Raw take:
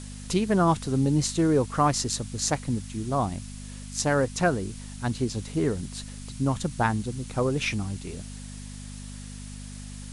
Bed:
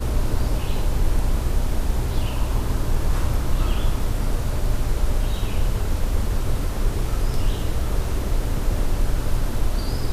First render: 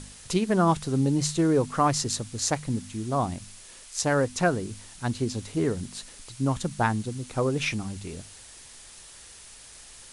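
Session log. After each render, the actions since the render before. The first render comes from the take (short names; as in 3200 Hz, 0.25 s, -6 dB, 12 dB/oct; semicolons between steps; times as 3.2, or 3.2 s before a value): de-hum 50 Hz, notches 5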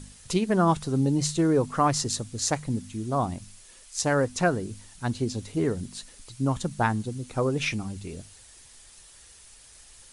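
denoiser 6 dB, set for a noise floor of -48 dBFS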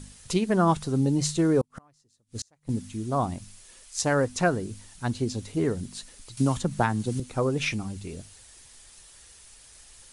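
1.61–2.69 flipped gate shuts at -23 dBFS, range -38 dB; 6.37–7.2 three-band squash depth 100%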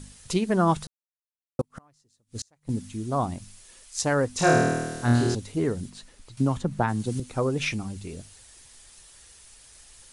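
0.87–1.59 mute; 4.36–5.35 flutter echo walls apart 4.3 m, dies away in 1.3 s; 5.89–6.87 high shelf 4500 Hz -> 2800 Hz -10.5 dB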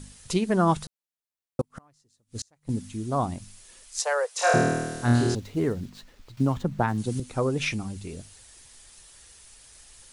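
4–4.54 steep high-pass 450 Hz 72 dB/oct; 5.35–6.98 median filter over 5 samples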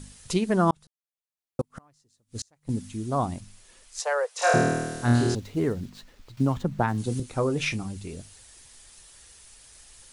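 0.71–1.73 fade in; 3.4–4.42 high shelf 4000 Hz -6.5 dB; 6.92–7.86 doubler 26 ms -11.5 dB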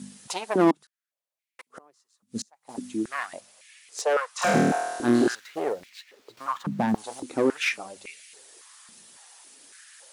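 one-sided clip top -26 dBFS; stepped high-pass 3.6 Hz 210–2200 Hz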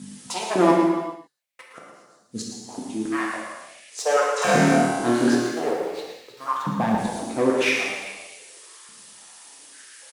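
on a send: echo 0.115 s -9 dB; on the sum: non-linear reverb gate 0.46 s falling, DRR -2.5 dB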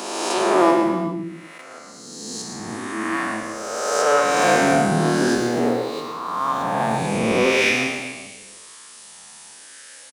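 spectral swells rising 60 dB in 1.90 s; bands offset in time highs, lows 0.37 s, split 250 Hz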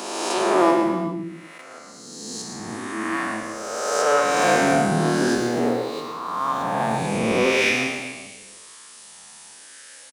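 gain -1.5 dB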